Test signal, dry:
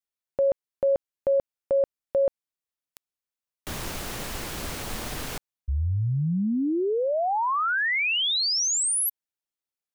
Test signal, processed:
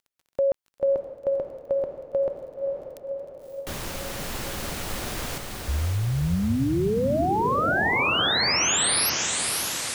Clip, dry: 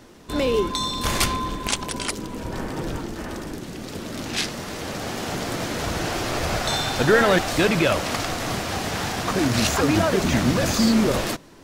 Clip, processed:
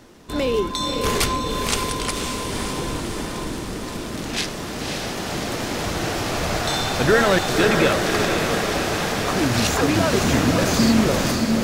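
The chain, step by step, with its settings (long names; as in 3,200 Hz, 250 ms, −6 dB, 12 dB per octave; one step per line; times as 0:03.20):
feedback delay with all-pass diffusion 555 ms, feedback 64%, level −4 dB
surface crackle 28 per second −46 dBFS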